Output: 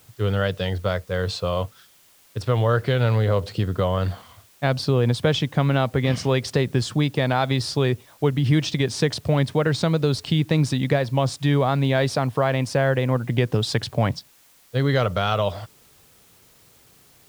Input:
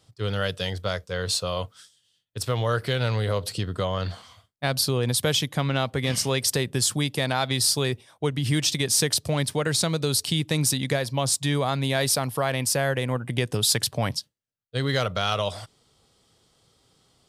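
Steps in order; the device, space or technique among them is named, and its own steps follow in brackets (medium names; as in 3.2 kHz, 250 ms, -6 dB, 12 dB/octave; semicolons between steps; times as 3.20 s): cassette deck with a dirty head (tape spacing loss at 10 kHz 25 dB; wow and flutter 28 cents; white noise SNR 33 dB); trim +6 dB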